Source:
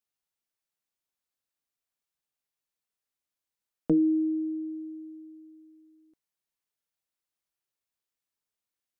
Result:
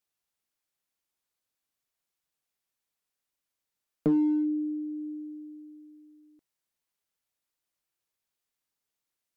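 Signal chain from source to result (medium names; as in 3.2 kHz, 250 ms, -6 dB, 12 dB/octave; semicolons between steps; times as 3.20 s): dynamic bell 270 Hz, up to -3 dB, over -37 dBFS, Q 1.3; in parallel at -5.5 dB: overload inside the chain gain 27 dB; on the sum: speed mistake 25 fps video run at 24 fps; trim -1 dB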